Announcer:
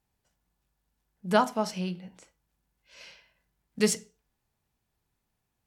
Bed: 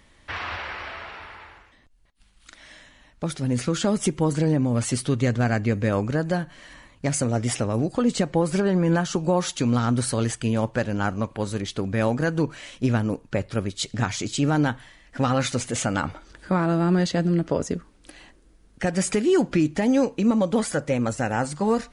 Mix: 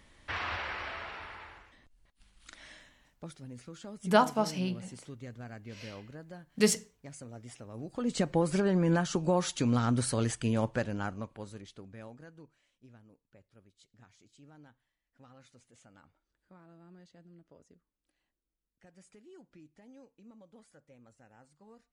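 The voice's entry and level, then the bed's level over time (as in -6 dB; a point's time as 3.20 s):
2.80 s, -0.5 dB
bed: 2.66 s -4 dB
3.55 s -23 dB
7.65 s -23 dB
8.22 s -6 dB
10.71 s -6 dB
12.73 s -35 dB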